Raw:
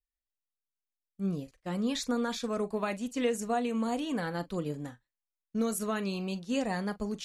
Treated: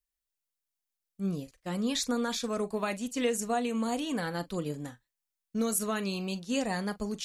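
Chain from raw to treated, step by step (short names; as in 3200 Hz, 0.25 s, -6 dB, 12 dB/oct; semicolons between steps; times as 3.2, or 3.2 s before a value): high shelf 3600 Hz +7 dB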